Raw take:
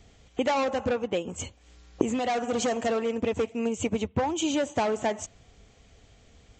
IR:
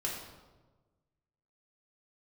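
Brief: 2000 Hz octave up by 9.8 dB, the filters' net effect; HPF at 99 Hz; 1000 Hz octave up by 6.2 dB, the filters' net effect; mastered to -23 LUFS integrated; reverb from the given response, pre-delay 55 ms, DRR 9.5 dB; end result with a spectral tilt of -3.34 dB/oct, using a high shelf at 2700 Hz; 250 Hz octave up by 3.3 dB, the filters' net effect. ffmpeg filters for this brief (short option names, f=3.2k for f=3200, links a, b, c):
-filter_complex "[0:a]highpass=99,equalizer=f=250:t=o:g=3.5,equalizer=f=1k:t=o:g=6,equalizer=f=2k:t=o:g=8.5,highshelf=f=2.7k:g=4.5,asplit=2[a][b];[1:a]atrim=start_sample=2205,adelay=55[c];[b][c]afir=irnorm=-1:irlink=0,volume=-13dB[d];[a][d]amix=inputs=2:normalize=0,volume=0.5dB"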